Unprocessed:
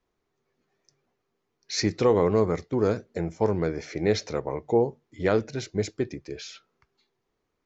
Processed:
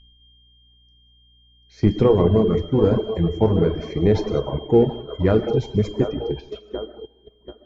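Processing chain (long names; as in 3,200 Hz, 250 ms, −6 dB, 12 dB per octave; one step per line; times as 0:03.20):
steady tone 3,200 Hz −35 dBFS
on a send: delay with a band-pass on its return 735 ms, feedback 56%, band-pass 690 Hz, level −7.5 dB
on the sum: mains hum 60 Hz, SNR 30 dB
spectral tilt −4 dB per octave
noise gate −30 dBFS, range −15 dB
in parallel at −11 dB: soft clipping −26.5 dBFS, distortion −3 dB
on the sum: reverb whose tail is shaped and stops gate 230 ms flat, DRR 3 dB
reverb reduction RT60 1.2 s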